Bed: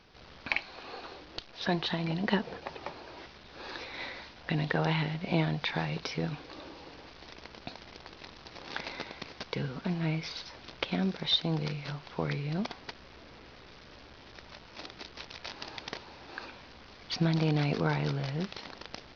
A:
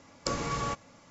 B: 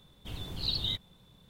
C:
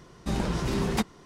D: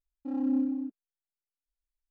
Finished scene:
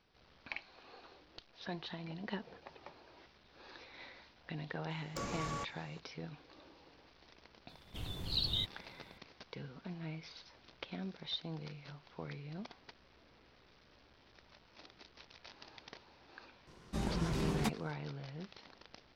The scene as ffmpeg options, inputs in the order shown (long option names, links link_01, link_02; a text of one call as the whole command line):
ffmpeg -i bed.wav -i cue0.wav -i cue1.wav -i cue2.wav -filter_complex "[0:a]volume=-13dB[link_01];[1:a]asoftclip=type=tanh:threshold=-27.5dB,atrim=end=1.1,asetpts=PTS-STARTPTS,volume=-6.5dB,afade=type=in:duration=0.004:curve=hsin,afade=type=out:start_time=1.096:duration=0.004:curve=hsin,adelay=4900[link_02];[2:a]atrim=end=1.49,asetpts=PTS-STARTPTS,volume=-3dB,afade=type=in:duration=0.004:curve=hsin,afade=type=out:start_time=1.486:duration=0.004:curve=hsin,adelay=7690[link_03];[3:a]atrim=end=1.25,asetpts=PTS-STARTPTS,volume=-8.5dB,afade=type=in:duration=0.004:curve=hsin,afade=type=out:start_time=1.246:duration=0.004:curve=hsin,adelay=16670[link_04];[link_01][link_02][link_03][link_04]amix=inputs=4:normalize=0" out.wav